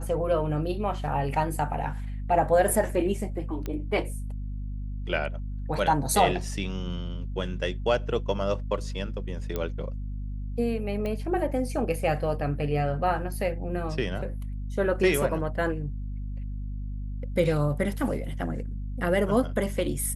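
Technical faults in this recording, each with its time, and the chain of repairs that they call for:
hum 50 Hz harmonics 5 -33 dBFS
3.66 pop -19 dBFS
9.56 pop -16 dBFS
11.06 pop -21 dBFS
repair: de-click; de-hum 50 Hz, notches 5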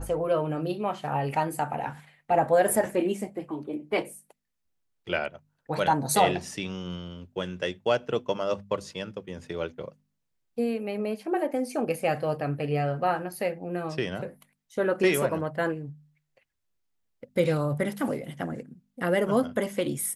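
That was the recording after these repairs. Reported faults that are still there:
3.66 pop

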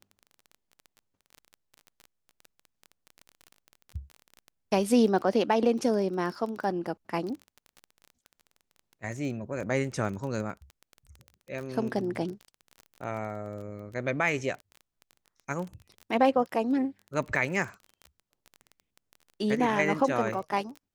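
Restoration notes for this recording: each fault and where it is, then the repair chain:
crackle 22/s -35 dBFS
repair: de-click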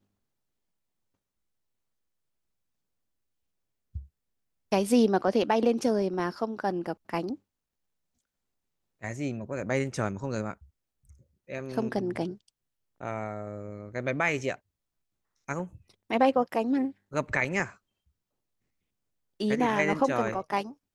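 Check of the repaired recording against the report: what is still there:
none

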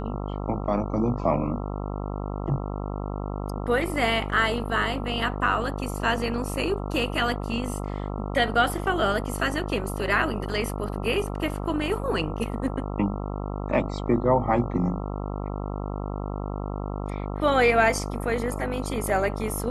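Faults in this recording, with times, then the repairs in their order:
buzz 50 Hz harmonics 27 -31 dBFS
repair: de-hum 50 Hz, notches 27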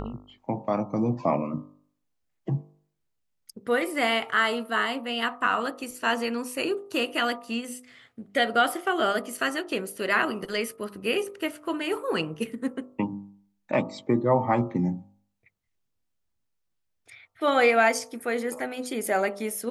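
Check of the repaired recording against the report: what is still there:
none

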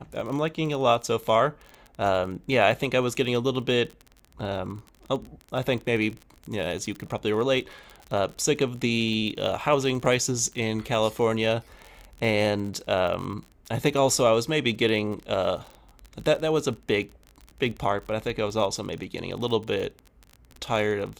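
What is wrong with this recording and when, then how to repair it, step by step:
crackle 30/s -32 dBFS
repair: de-click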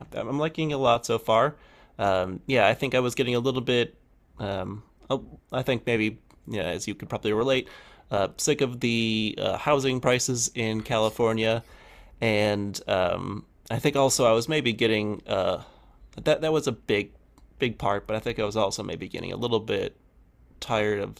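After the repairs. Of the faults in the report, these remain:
none

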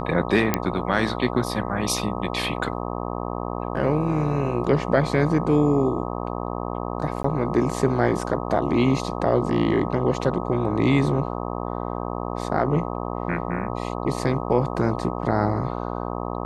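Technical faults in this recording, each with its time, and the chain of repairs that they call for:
buzz 60 Hz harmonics 21 -29 dBFS
0.54 pop -4 dBFS
7.23–7.24 gap 14 ms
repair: de-click; de-hum 60 Hz, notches 21; interpolate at 7.23, 14 ms

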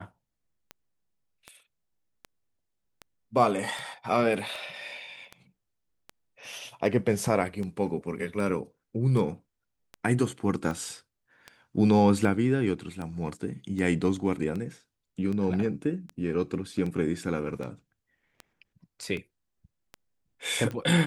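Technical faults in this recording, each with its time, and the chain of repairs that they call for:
tick 78 rpm -24 dBFS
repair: de-click

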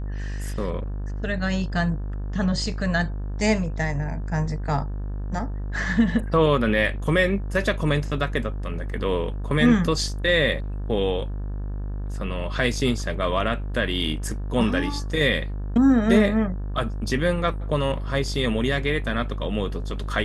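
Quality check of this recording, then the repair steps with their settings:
buzz 50 Hz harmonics 36 -29 dBFS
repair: de-hum 50 Hz, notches 36

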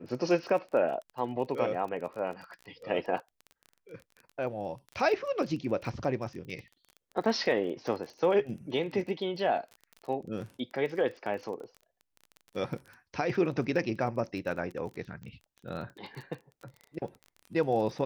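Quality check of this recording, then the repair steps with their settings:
crackle 22/s -38 dBFS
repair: de-click

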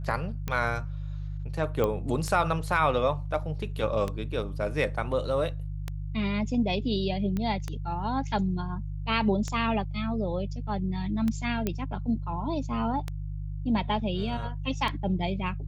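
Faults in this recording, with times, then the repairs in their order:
hum 50 Hz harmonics 3 -34 dBFS
tick 33 1/3 rpm -17 dBFS
1.84 pop -15 dBFS
7.37 pop -19 dBFS
11.67 pop -14 dBFS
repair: de-click; de-hum 50 Hz, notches 3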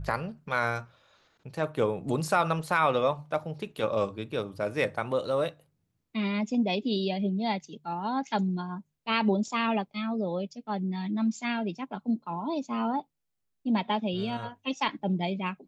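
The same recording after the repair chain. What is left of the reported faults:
none

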